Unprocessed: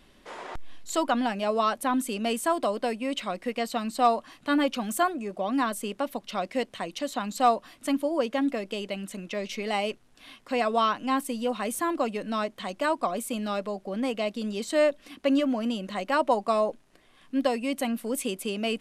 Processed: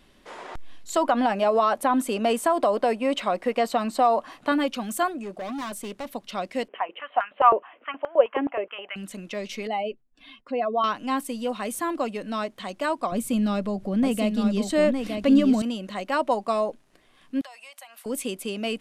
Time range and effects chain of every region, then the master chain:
0:00.96–0:04.52: parametric band 750 Hz +10 dB 2.5 octaves + downward compressor 3 to 1, threshold −17 dBFS
0:05.23–0:06.09: high-shelf EQ 11,000 Hz −2.5 dB + hard clipping −30 dBFS
0:06.68–0:08.96: Butterworth low-pass 3,100 Hz 96 dB per octave + high-pass on a step sequencer 9.5 Hz 400–1,500 Hz
0:09.67–0:10.84: expanding power law on the bin magnitudes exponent 1.8 + dynamic equaliser 3,800 Hz, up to +5 dB, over −49 dBFS, Q 0.89 + downward expander −56 dBFS
0:13.12–0:15.62: bass and treble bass +15 dB, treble 0 dB + upward compression, threshold −28 dBFS + single-tap delay 909 ms −5 dB
0:17.41–0:18.06: inverse Chebyshev high-pass filter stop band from 360 Hz + downward compressor 8 to 1, threshold −41 dBFS
whole clip: no processing

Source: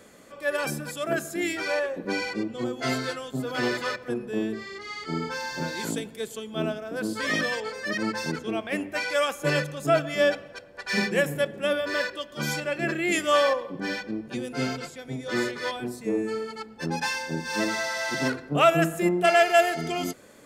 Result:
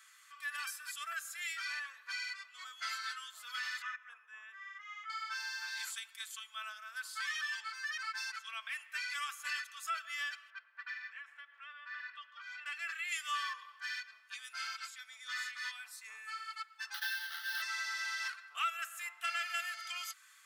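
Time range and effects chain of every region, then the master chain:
0:03.82–0:05.10: moving average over 10 samples + low-shelf EQ 370 Hz −7.5 dB
0:10.50–0:12.66: low-pass filter 2,100 Hz + downward compressor, threshold −33 dBFS
0:16.94–0:17.62: each half-wave held at its own peak + phaser with its sweep stopped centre 1,600 Hz, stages 8
whole clip: elliptic high-pass filter 1,200 Hz, stop band 80 dB; comb filter 4.5 ms, depth 46%; downward compressor 2 to 1, threshold −35 dBFS; level −4.5 dB

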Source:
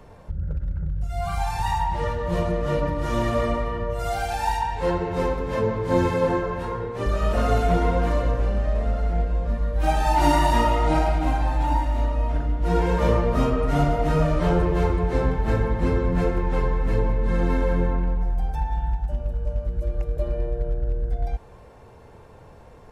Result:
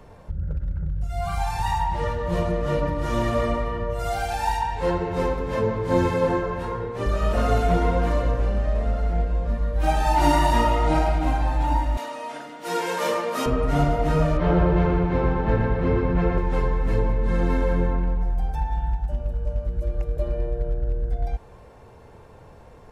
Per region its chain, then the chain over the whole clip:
0:11.97–0:13.46: high-pass filter 190 Hz 24 dB per octave + spectral tilt +3.5 dB per octave + double-tracking delay 15 ms −13.5 dB
0:14.37–0:16.38: low-pass filter 3,100 Hz + repeating echo 120 ms, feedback 58%, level −5 dB
whole clip: no processing

